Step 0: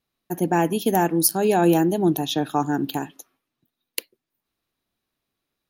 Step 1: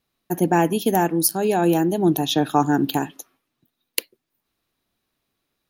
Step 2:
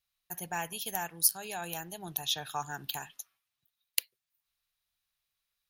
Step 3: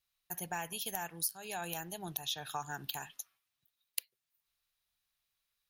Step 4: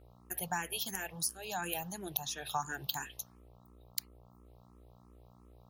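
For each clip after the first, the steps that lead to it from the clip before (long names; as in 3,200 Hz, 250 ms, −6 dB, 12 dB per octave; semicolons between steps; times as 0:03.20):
speech leveller within 3 dB 0.5 s; level +1.5 dB
guitar amp tone stack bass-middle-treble 10-0-10; level −4.5 dB
downward compressor 3 to 1, threshold −35 dBFS, peak gain reduction 12 dB
hum with harmonics 60 Hz, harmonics 22, −61 dBFS −5 dB per octave; frequency shifter mixed with the dry sound +2.9 Hz; level +5 dB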